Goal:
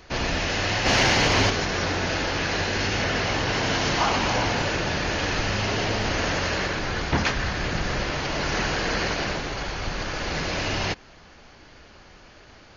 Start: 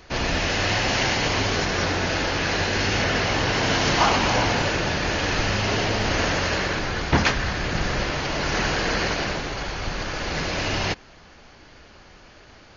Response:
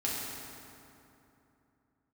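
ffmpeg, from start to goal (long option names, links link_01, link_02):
-filter_complex "[0:a]asplit=2[link_01][link_02];[link_02]alimiter=limit=-16dB:level=0:latency=1:release=147,volume=-0.5dB[link_03];[link_01][link_03]amix=inputs=2:normalize=0,asplit=3[link_04][link_05][link_06];[link_04]afade=type=out:start_time=0.85:duration=0.02[link_07];[link_05]acontrast=46,afade=type=in:start_time=0.85:duration=0.02,afade=type=out:start_time=1.49:duration=0.02[link_08];[link_06]afade=type=in:start_time=1.49:duration=0.02[link_09];[link_07][link_08][link_09]amix=inputs=3:normalize=0,volume=-6.5dB"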